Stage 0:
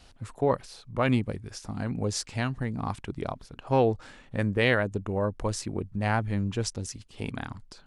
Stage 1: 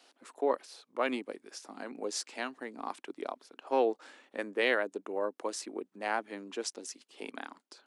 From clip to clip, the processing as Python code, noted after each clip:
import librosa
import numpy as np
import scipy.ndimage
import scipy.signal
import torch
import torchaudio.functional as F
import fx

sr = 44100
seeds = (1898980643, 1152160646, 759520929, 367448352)

y = scipy.signal.sosfilt(scipy.signal.butter(6, 280.0, 'highpass', fs=sr, output='sos'), x)
y = F.gain(torch.from_numpy(y), -4.0).numpy()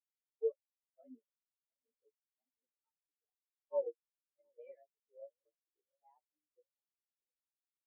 y = fx.partial_stretch(x, sr, pct=110)
y = fx.echo_filtered(y, sr, ms=713, feedback_pct=65, hz=2000.0, wet_db=-11)
y = fx.spectral_expand(y, sr, expansion=4.0)
y = F.gain(torch.from_numpy(y), -6.5).numpy()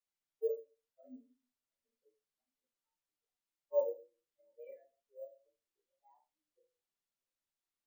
y = fx.room_shoebox(x, sr, seeds[0], volume_m3=130.0, walls='furnished', distance_m=1.2)
y = np.repeat(scipy.signal.resample_poly(y, 1, 2), 2)[:len(y)]